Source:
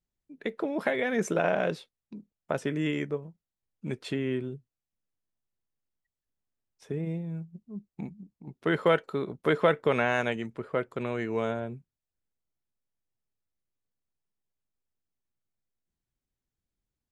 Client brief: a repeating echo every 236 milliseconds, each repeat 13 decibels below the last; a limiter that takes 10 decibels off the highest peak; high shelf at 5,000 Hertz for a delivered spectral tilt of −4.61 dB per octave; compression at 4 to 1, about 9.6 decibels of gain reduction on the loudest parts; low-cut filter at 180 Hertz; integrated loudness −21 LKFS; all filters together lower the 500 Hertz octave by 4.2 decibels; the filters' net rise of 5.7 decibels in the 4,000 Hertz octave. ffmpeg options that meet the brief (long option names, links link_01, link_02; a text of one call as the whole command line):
ffmpeg -i in.wav -af "highpass=180,equalizer=frequency=500:width_type=o:gain=-5,equalizer=frequency=4000:width_type=o:gain=5.5,highshelf=frequency=5000:gain=5.5,acompressor=threshold=-32dB:ratio=4,alimiter=level_in=2dB:limit=-24dB:level=0:latency=1,volume=-2dB,aecho=1:1:236|472|708:0.224|0.0493|0.0108,volume=19dB" out.wav